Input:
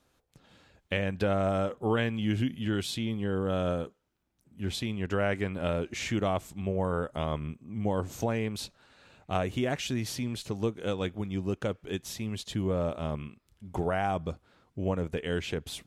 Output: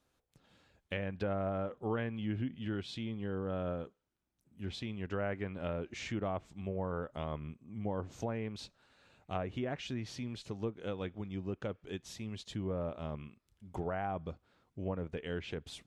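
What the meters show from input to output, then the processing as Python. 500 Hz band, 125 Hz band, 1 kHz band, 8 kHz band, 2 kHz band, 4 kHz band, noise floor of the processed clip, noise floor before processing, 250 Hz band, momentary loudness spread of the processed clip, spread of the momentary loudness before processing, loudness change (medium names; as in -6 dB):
-7.5 dB, -7.5 dB, -7.5 dB, -12.5 dB, -8.5 dB, -9.5 dB, -80 dBFS, -72 dBFS, -7.5 dB, 7 LU, 7 LU, -7.5 dB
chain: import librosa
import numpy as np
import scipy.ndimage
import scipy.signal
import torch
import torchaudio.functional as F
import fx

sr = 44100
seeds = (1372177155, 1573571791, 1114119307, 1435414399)

y = fx.env_lowpass_down(x, sr, base_hz=2000.0, full_db=-24.5)
y = y * librosa.db_to_amplitude(-7.5)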